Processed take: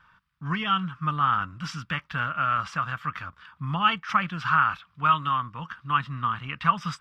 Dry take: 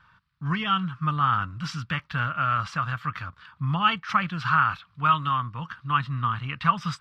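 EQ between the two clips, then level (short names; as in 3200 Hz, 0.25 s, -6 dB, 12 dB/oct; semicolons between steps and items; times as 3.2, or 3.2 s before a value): bell 110 Hz -7.5 dB 0.8 oct; bell 4200 Hz -7.5 dB 0.22 oct; 0.0 dB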